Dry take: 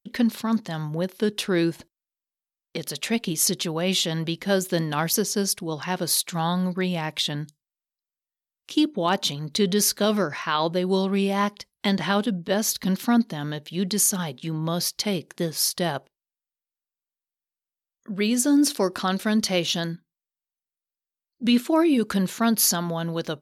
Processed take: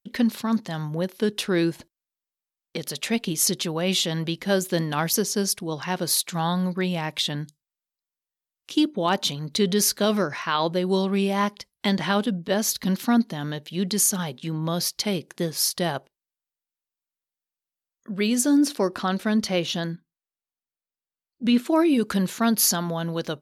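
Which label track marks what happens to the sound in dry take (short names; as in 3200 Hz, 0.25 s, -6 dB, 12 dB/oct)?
18.580000	21.660000	high shelf 3600 Hz -7 dB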